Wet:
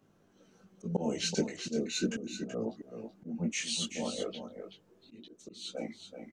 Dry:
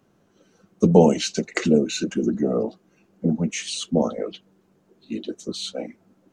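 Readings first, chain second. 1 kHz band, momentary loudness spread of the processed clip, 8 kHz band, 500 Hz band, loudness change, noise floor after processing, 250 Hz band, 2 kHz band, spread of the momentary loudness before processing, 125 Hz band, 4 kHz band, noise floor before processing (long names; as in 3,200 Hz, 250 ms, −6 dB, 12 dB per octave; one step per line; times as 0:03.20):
−16.0 dB, 16 LU, −6.0 dB, −15.0 dB, −13.0 dB, −67 dBFS, −14.0 dB, −8.5 dB, 16 LU, −15.0 dB, −6.0 dB, −63 dBFS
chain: multi-voice chorus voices 2, 0.37 Hz, delay 19 ms, depth 2.6 ms
volume swells 372 ms
single-tap delay 379 ms −8.5 dB
level −1.5 dB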